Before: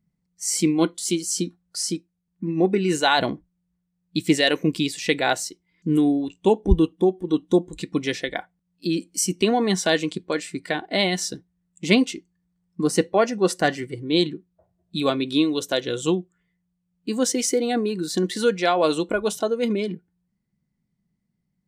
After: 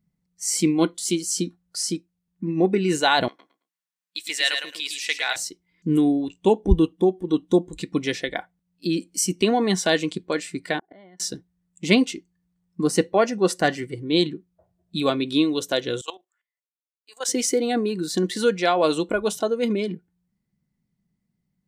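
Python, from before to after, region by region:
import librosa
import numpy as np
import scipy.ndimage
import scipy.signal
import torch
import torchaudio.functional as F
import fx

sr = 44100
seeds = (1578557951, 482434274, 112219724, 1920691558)

y = fx.chain(x, sr, fx.highpass(hz=1300.0, slope=12),
    fx.echo_feedback(ms=109, feedback_pct=20, wet_db=-5.5), at=(3.28, 5.36))
y = fx.chain(y, sr, fx.savgol(points=41),
    fx.gate_flip(shuts_db=-25.0, range_db=-26), at=(10.79, 11.2))
y = fx.chain(y, sr, fx.highpass(hz=660.0, slope=24),
    fx.level_steps(step_db=15),
    fx.band_widen(depth_pct=40), at=(16.01, 17.28))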